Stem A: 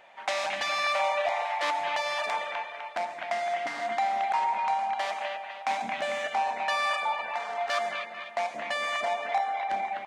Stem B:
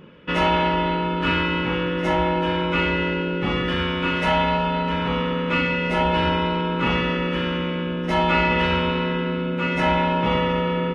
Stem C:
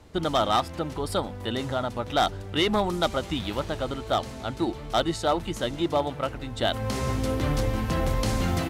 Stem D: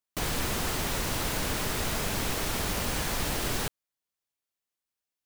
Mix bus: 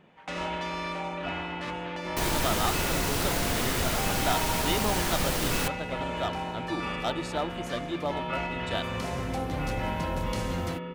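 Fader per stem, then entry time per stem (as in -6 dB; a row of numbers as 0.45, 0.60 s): -10.0, -14.0, -7.0, +1.5 dB; 0.00, 0.00, 2.10, 2.00 s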